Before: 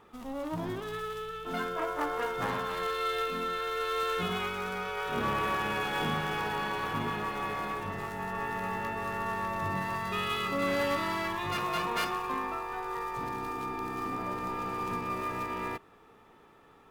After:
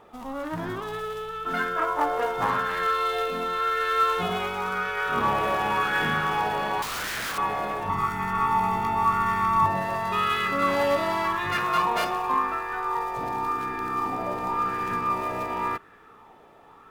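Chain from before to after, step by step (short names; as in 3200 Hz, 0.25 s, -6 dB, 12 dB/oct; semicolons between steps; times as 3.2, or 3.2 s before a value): 6.82–7.38 wrapped overs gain 31.5 dB; 7.89–9.66 comb 0.9 ms, depth 97%; LFO bell 0.91 Hz 630–1700 Hz +10 dB; gain +2.5 dB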